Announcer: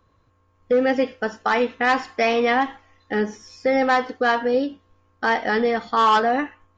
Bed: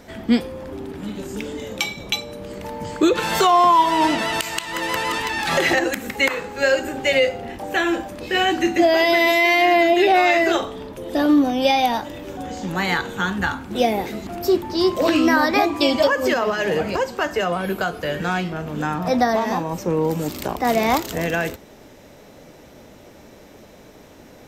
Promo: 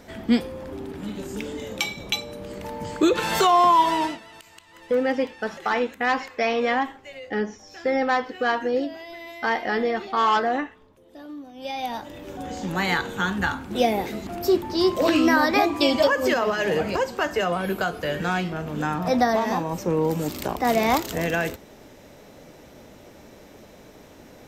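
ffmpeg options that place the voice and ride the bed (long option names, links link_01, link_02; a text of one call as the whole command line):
ffmpeg -i stem1.wav -i stem2.wav -filter_complex "[0:a]adelay=4200,volume=-3.5dB[link_01];[1:a]volume=18.5dB,afade=type=out:start_time=3.89:duration=0.31:silence=0.0944061,afade=type=in:start_time=11.53:duration=1.03:silence=0.0891251[link_02];[link_01][link_02]amix=inputs=2:normalize=0" out.wav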